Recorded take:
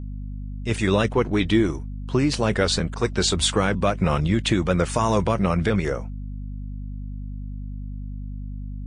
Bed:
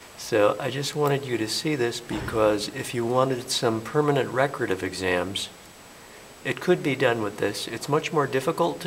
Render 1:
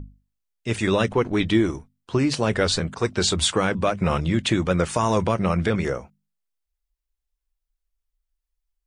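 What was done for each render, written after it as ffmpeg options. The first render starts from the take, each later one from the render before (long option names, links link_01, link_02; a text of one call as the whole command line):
ffmpeg -i in.wav -af "bandreject=frequency=50:width_type=h:width=6,bandreject=frequency=100:width_type=h:width=6,bandreject=frequency=150:width_type=h:width=6,bandreject=frequency=200:width_type=h:width=6,bandreject=frequency=250:width_type=h:width=6" out.wav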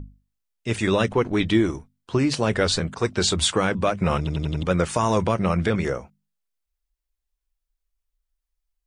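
ffmpeg -i in.wav -filter_complex "[0:a]asplit=6[link_01][link_02][link_03][link_04][link_05][link_06];[link_01]atrim=end=4.272[link_07];[link_02]atrim=start=4.178:end=4.272[link_08];[link_03]atrim=start=4.178:end=4.272[link_09];[link_04]atrim=start=4.178:end=4.272[link_10];[link_05]atrim=start=4.178:end=4.272[link_11];[link_06]atrim=start=4.628[link_12];[link_07][link_08]acrossfade=duration=0.004:curve1=hsin:curve2=hsin[link_13];[link_13][link_09]acrossfade=duration=0.004:curve1=hsin:curve2=hsin[link_14];[link_14][link_10]acrossfade=duration=0.004:curve1=hsin:curve2=hsin[link_15];[link_15][link_11]acrossfade=duration=0.004:curve1=hsin:curve2=hsin[link_16];[link_16][link_12]acrossfade=duration=0.004:curve1=hsin:curve2=hsin" out.wav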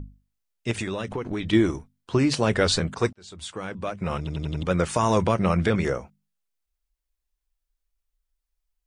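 ffmpeg -i in.wav -filter_complex "[0:a]asettb=1/sr,asplit=3[link_01][link_02][link_03];[link_01]atrim=end=0.714[link_04];[link_02]atrim=start=0.71:end=1.53,asetpts=PTS-STARTPTS,afade=type=in:duration=0.004:curve=qsin,afade=type=out:start_time=0.816:duration=0.004:curve=qsin,acompressor=threshold=-25dB:ratio=10:attack=3.2:release=140:knee=1:detection=peak[link_05];[link_03]atrim=start=1.526[link_06];[link_04][link_05]acrossfade=duration=0.004:curve1=hsin:curve2=qsin[link_07];[link_07][link_06]acrossfade=duration=0.004:curve1=qsin:curve2=hsin,asplit=2[link_08][link_09];[link_08]atrim=end=3.13,asetpts=PTS-STARTPTS,afade=type=out:start_time=3.126:duration=0.004:curve=hsin[link_10];[link_09]atrim=start=3.13,asetpts=PTS-STARTPTS,afade=type=in:duration=2[link_11];[link_10][link_11]concat=n=2:v=0:a=1" out.wav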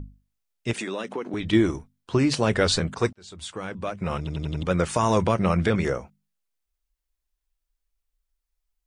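ffmpeg -i in.wav -filter_complex "[0:a]asettb=1/sr,asplit=3[link_01][link_02][link_03];[link_01]atrim=end=0.734[link_04];[link_02]atrim=start=0.73:end=1.34,asetpts=PTS-STARTPTS,afade=type=in:duration=0.004:curve=qsin,afade=type=out:start_time=0.606:duration=0.004:curve=qsin,highpass=frequency=210:width=0.5412,highpass=frequency=210:width=1.3066[link_05];[link_03]atrim=start=1.336[link_06];[link_04][link_05]acrossfade=duration=0.004:curve1=hsin:curve2=qsin[link_07];[link_07][link_06]acrossfade=duration=0.004:curve1=qsin:curve2=hsin" out.wav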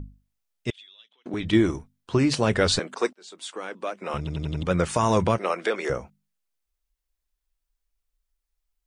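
ffmpeg -i in.wav -filter_complex "[0:a]asettb=1/sr,asplit=3[link_01][link_02][link_03];[link_01]atrim=end=0.704[link_04];[link_02]atrim=start=0.7:end=1.26,asetpts=PTS-STARTPTS,afade=type=in:duration=0.004:curve=qsin,afade=type=out:start_time=0.556:duration=0.004:curve=qsin,bandpass=frequency=3400:width_type=q:width=16[link_05];[link_03]atrim=start=1.256[link_06];[link_04][link_05]acrossfade=duration=0.004:curve1=hsin:curve2=qsin[link_07];[link_07][link_06]acrossfade=duration=0.004:curve1=qsin:curve2=hsin,asettb=1/sr,asplit=3[link_08][link_09][link_10];[link_08]atrim=end=2.794[link_11];[link_09]atrim=start=2.79:end=4.14,asetpts=PTS-STARTPTS,afade=type=in:duration=0.004:curve=qsin,afade=type=out:start_time=1.346:duration=0.004:curve=qsin,highpass=frequency=280:width=0.5412,highpass=frequency=280:width=1.3066[link_12];[link_10]atrim=start=4.136[link_13];[link_11][link_12]acrossfade=duration=0.004:curve1=hsin:curve2=qsin[link_14];[link_14][link_13]acrossfade=duration=0.004:curve1=qsin:curve2=hsin,asettb=1/sr,asplit=3[link_15][link_16][link_17];[link_15]atrim=end=5.384[link_18];[link_16]atrim=start=5.38:end=5.9,asetpts=PTS-STARTPTS,afade=type=in:duration=0.004:curve=qsin,afade=type=out:start_time=0.516:duration=0.004:curve=qsin,highpass=frequency=350:width=0.5412,highpass=frequency=350:width=1.3066[link_19];[link_17]atrim=start=5.896[link_20];[link_18][link_19]acrossfade=duration=0.004:curve1=hsin:curve2=qsin[link_21];[link_21][link_20]acrossfade=duration=0.004:curve1=qsin:curve2=hsin" out.wav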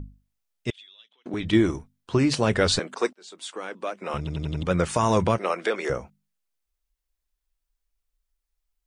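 ffmpeg -i in.wav -af anull out.wav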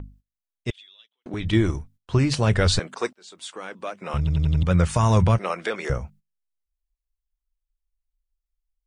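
ffmpeg -i in.wav -af "agate=range=-16dB:threshold=-53dB:ratio=16:detection=peak,asubboost=boost=6:cutoff=130" out.wav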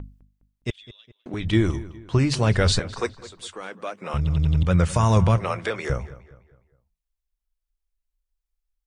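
ffmpeg -i in.wav -filter_complex "[0:a]asplit=2[link_01][link_02];[link_02]adelay=206,lowpass=frequency=3400:poles=1,volume=-17dB,asplit=2[link_03][link_04];[link_04]adelay=206,lowpass=frequency=3400:poles=1,volume=0.42,asplit=2[link_05][link_06];[link_06]adelay=206,lowpass=frequency=3400:poles=1,volume=0.42,asplit=2[link_07][link_08];[link_08]adelay=206,lowpass=frequency=3400:poles=1,volume=0.42[link_09];[link_01][link_03][link_05][link_07][link_09]amix=inputs=5:normalize=0" out.wav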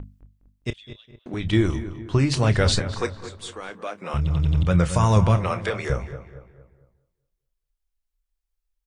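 ffmpeg -i in.wav -filter_complex "[0:a]asplit=2[link_01][link_02];[link_02]adelay=29,volume=-13.5dB[link_03];[link_01][link_03]amix=inputs=2:normalize=0,asplit=2[link_04][link_05];[link_05]adelay=228,lowpass=frequency=2000:poles=1,volume=-12.5dB,asplit=2[link_06][link_07];[link_07]adelay=228,lowpass=frequency=2000:poles=1,volume=0.44,asplit=2[link_08][link_09];[link_09]adelay=228,lowpass=frequency=2000:poles=1,volume=0.44,asplit=2[link_10][link_11];[link_11]adelay=228,lowpass=frequency=2000:poles=1,volume=0.44[link_12];[link_04][link_06][link_08][link_10][link_12]amix=inputs=5:normalize=0" out.wav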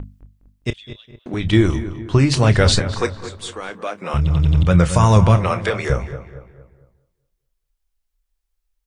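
ffmpeg -i in.wav -af "volume=5.5dB,alimiter=limit=-1dB:level=0:latency=1" out.wav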